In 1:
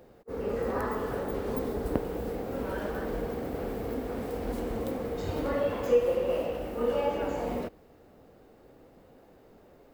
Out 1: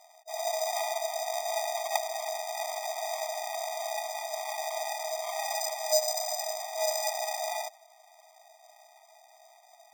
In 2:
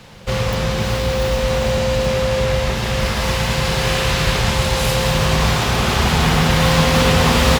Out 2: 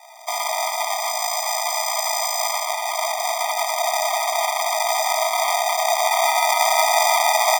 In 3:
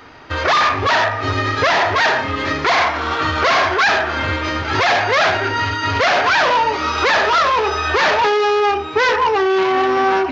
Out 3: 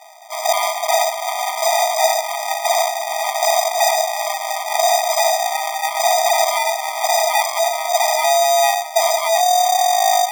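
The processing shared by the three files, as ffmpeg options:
-af "acrusher=samples=40:mix=1:aa=0.000001,afftfilt=real='re*eq(mod(floor(b*sr/1024/630),2),1)':imag='im*eq(mod(floor(b*sr/1024/630),2),1)':win_size=1024:overlap=0.75,volume=2.51"

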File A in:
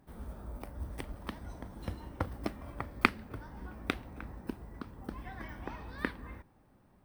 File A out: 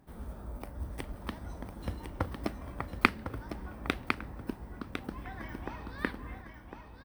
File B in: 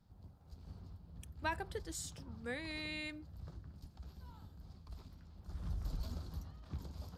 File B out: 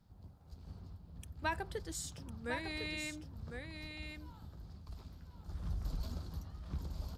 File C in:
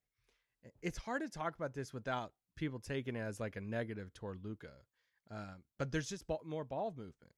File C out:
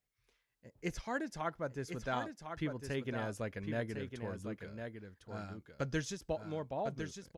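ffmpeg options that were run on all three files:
-af "aecho=1:1:1054:0.447,volume=1.19"

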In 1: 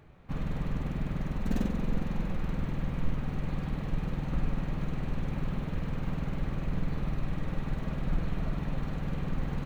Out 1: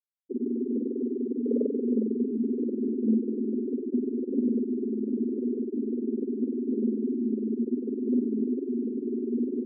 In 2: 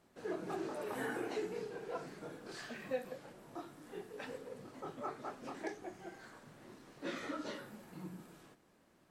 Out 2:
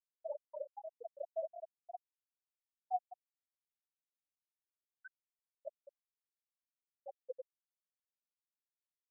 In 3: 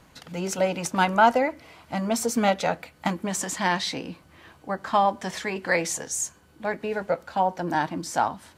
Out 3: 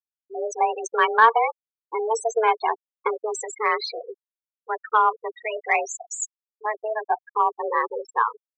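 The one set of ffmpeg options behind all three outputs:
-af "afreqshift=220,afftfilt=real='re*gte(hypot(re,im),0.1)':imag='im*gte(hypot(re,im),0.1)':win_size=1024:overlap=0.75,aeval=exprs='0.562*(cos(1*acos(clip(val(0)/0.562,-1,1)))-cos(1*PI/2))+0.0316*(cos(3*acos(clip(val(0)/0.562,-1,1)))-cos(3*PI/2))':c=same,volume=1.5"

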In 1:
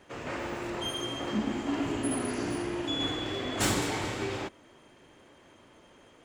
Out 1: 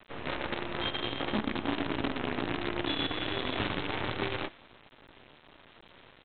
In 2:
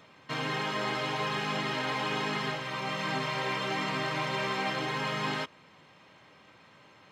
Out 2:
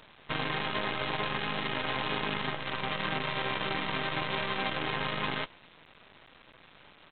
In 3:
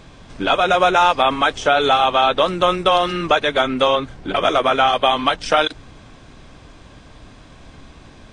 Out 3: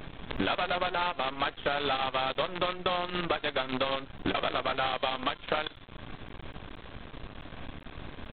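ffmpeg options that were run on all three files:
-af "bandreject=f=345.2:t=h:w=4,bandreject=f=690.4:t=h:w=4,bandreject=f=1035.6:t=h:w=4,bandreject=f=1380.8:t=h:w=4,bandreject=f=1726:t=h:w=4,bandreject=f=2071.2:t=h:w=4,bandreject=f=2416.4:t=h:w=4,bandreject=f=2761.6:t=h:w=4,bandreject=f=3106.8:t=h:w=4,bandreject=f=3452:t=h:w=4,bandreject=f=3797.2:t=h:w=4,bandreject=f=4142.4:t=h:w=4,bandreject=f=4487.6:t=h:w=4,bandreject=f=4832.8:t=h:w=4,bandreject=f=5178:t=h:w=4,bandreject=f=5523.2:t=h:w=4,bandreject=f=5868.4:t=h:w=4,bandreject=f=6213.6:t=h:w=4,bandreject=f=6558.8:t=h:w=4,bandreject=f=6904:t=h:w=4,bandreject=f=7249.2:t=h:w=4,bandreject=f=7594.4:t=h:w=4,bandreject=f=7939.6:t=h:w=4,bandreject=f=8284.8:t=h:w=4,bandreject=f=8630:t=h:w=4,bandreject=f=8975.2:t=h:w=4,bandreject=f=9320.4:t=h:w=4,bandreject=f=9665.6:t=h:w=4,bandreject=f=10010.8:t=h:w=4,bandreject=f=10356:t=h:w=4,bandreject=f=10701.2:t=h:w=4,bandreject=f=11046.4:t=h:w=4,bandreject=f=11391.6:t=h:w=4,bandreject=f=11736.8:t=h:w=4,bandreject=f=12082:t=h:w=4,bandreject=f=12427.2:t=h:w=4,acompressor=threshold=0.0282:ratio=8,aresample=8000,acrusher=bits=6:dc=4:mix=0:aa=0.000001,aresample=44100,volume=1.41"

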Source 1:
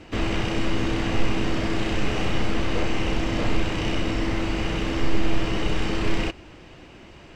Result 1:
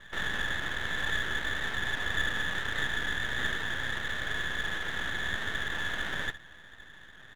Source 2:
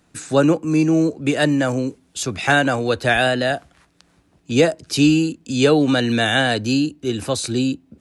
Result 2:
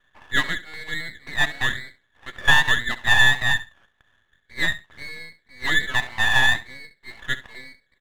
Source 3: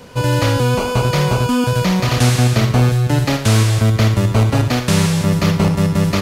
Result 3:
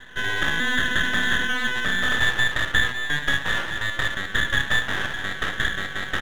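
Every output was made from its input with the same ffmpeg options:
-filter_complex "[0:a]highpass=f=770:t=q:w=8.2,lowpass=f=2100:t=q:w=0.5098,lowpass=f=2100:t=q:w=0.6013,lowpass=f=2100:t=q:w=0.9,lowpass=f=2100:t=q:w=2.563,afreqshift=-2500,asplit=2[s0][s1];[s1]aecho=0:1:67|134:0.168|0.0285[s2];[s0][s2]amix=inputs=2:normalize=0,aeval=exprs='max(val(0),0)':c=same,volume=0.631"

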